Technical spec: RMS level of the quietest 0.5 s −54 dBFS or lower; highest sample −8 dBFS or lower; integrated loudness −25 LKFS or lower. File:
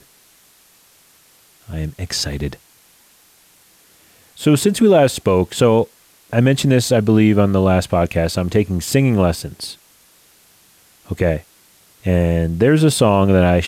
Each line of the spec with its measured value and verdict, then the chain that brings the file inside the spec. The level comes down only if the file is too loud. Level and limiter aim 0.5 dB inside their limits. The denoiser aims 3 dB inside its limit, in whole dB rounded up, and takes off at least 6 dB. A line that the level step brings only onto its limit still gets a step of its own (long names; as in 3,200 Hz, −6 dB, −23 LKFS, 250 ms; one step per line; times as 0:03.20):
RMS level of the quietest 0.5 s −52 dBFS: out of spec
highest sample −4.0 dBFS: out of spec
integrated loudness −16.5 LKFS: out of spec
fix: level −9 dB